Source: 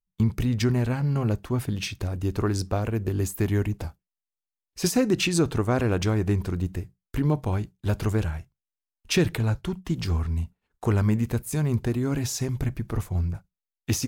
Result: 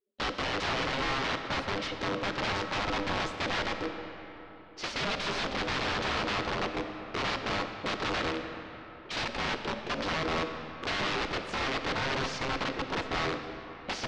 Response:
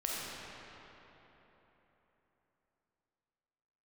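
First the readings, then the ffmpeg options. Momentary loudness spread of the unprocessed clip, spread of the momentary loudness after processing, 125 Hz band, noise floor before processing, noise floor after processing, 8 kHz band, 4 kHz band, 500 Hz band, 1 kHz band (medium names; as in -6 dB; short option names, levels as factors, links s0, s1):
8 LU, 8 LU, -17.5 dB, under -85 dBFS, -47 dBFS, -11.0 dB, +3.0 dB, -4.5 dB, +5.5 dB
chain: -filter_complex "[0:a]aeval=exprs='val(0)*sin(2*PI*400*n/s)':c=same,aeval=exprs='(mod(18.8*val(0)+1,2)-1)/18.8':c=same,lowpass=f=4900:w=0.5412,lowpass=f=4900:w=1.3066,asplit=2[s0][s1];[1:a]atrim=start_sample=2205[s2];[s1][s2]afir=irnorm=-1:irlink=0,volume=0.398[s3];[s0][s3]amix=inputs=2:normalize=0,volume=0.794"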